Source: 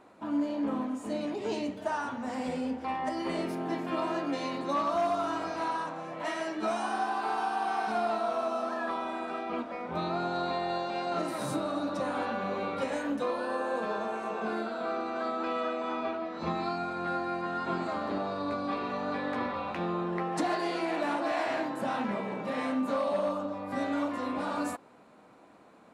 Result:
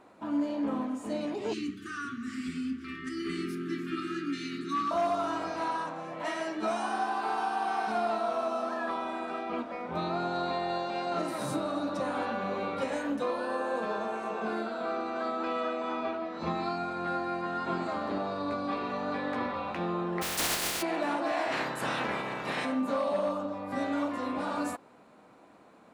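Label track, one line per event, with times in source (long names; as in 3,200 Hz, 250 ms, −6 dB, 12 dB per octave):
1.530000	4.910000	linear-phase brick-wall band-stop 420–1,100 Hz
20.210000	20.810000	compressing power law on the bin magnitudes exponent 0.19
21.510000	22.640000	ceiling on every frequency bin ceiling under each frame's peak by 19 dB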